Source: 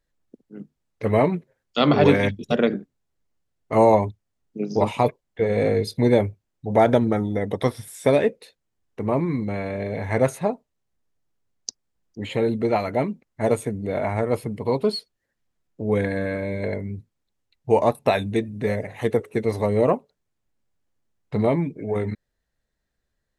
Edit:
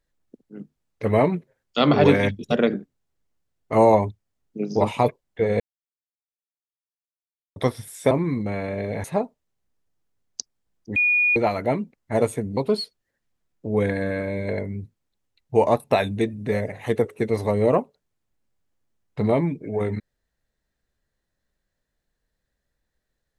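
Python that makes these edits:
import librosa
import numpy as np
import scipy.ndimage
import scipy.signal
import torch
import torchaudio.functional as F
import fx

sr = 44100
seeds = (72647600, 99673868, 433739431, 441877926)

y = fx.edit(x, sr, fx.silence(start_s=5.6, length_s=1.96),
    fx.cut(start_s=8.11, length_s=1.02),
    fx.cut(start_s=10.06, length_s=0.27),
    fx.bleep(start_s=12.25, length_s=0.4, hz=2450.0, db=-16.0),
    fx.cut(start_s=13.86, length_s=0.86), tone=tone)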